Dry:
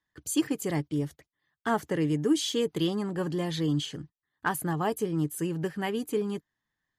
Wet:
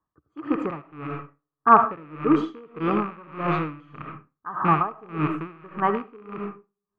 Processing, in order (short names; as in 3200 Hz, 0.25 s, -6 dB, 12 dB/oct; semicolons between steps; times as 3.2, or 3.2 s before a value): rattling part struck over -35 dBFS, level -20 dBFS; low-pass opened by the level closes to 700 Hz, open at -25 dBFS; synth low-pass 1200 Hz, resonance Q 8.8; digital reverb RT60 0.6 s, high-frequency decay 0.55×, pre-delay 35 ms, DRR 6 dB; dB-linear tremolo 1.7 Hz, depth 26 dB; gain +6 dB